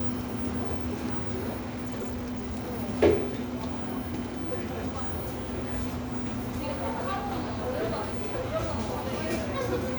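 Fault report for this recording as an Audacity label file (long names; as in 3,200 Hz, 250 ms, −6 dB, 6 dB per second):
1.590000	2.780000	clipping −30.5 dBFS
4.700000	8.320000	clipping −26 dBFS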